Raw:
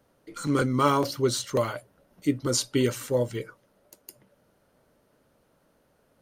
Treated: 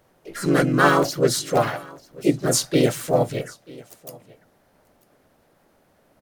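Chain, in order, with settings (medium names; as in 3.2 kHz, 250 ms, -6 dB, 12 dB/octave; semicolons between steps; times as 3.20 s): delay 942 ms -23 dB; harmony voices +3 st -2 dB, +5 st -5 dB, +7 st -13 dB; trim +2.5 dB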